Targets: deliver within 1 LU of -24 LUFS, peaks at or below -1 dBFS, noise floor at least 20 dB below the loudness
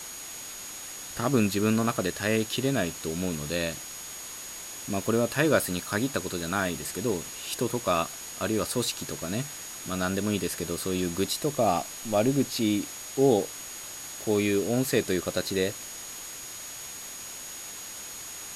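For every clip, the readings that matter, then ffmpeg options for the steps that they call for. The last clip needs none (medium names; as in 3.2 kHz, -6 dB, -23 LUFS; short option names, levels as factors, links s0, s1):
steady tone 6.7 kHz; tone level -41 dBFS; noise floor -40 dBFS; noise floor target -49 dBFS; loudness -29.0 LUFS; peak level -9.5 dBFS; loudness target -24.0 LUFS
-> -af "bandreject=f=6700:w=30"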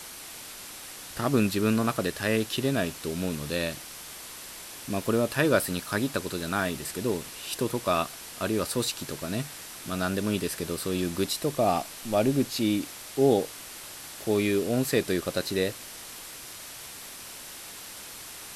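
steady tone not found; noise floor -43 dBFS; noise floor target -48 dBFS
-> -af "afftdn=nr=6:nf=-43"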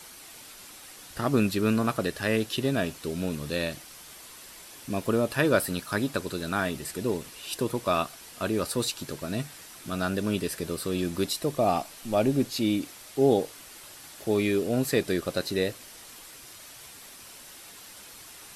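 noise floor -47 dBFS; noise floor target -48 dBFS
-> -af "afftdn=nr=6:nf=-47"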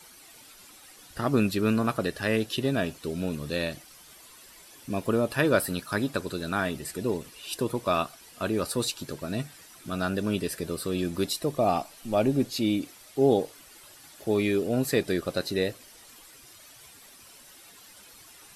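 noise floor -52 dBFS; loudness -28.5 LUFS; peak level -10.0 dBFS; loudness target -24.0 LUFS
-> -af "volume=1.68"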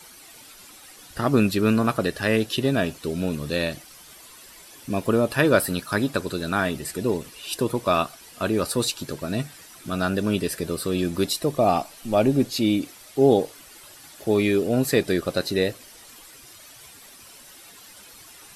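loudness -24.0 LUFS; peak level -5.5 dBFS; noise floor -47 dBFS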